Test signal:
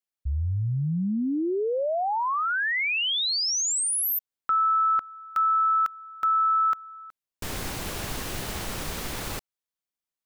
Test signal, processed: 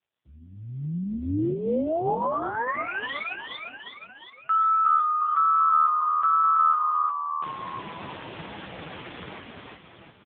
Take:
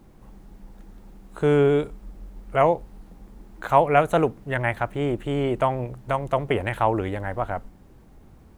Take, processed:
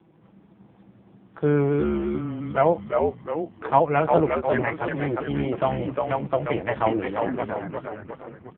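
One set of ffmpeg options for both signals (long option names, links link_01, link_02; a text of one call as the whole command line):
ffmpeg -i in.wav -filter_complex "[0:a]highpass=100,aecho=1:1:6.1:0.47,asplit=2[link_01][link_02];[link_02]asplit=7[link_03][link_04][link_05][link_06][link_07][link_08][link_09];[link_03]adelay=354,afreqshift=-78,volume=-3dB[link_10];[link_04]adelay=708,afreqshift=-156,volume=-8.5dB[link_11];[link_05]adelay=1062,afreqshift=-234,volume=-14dB[link_12];[link_06]adelay=1416,afreqshift=-312,volume=-19.5dB[link_13];[link_07]adelay=1770,afreqshift=-390,volume=-25.1dB[link_14];[link_08]adelay=2124,afreqshift=-468,volume=-30.6dB[link_15];[link_09]adelay=2478,afreqshift=-546,volume=-36.1dB[link_16];[link_10][link_11][link_12][link_13][link_14][link_15][link_16]amix=inputs=7:normalize=0[link_17];[link_01][link_17]amix=inputs=2:normalize=0,volume=-1.5dB" -ar 8000 -c:a libopencore_amrnb -b:a 5150 out.amr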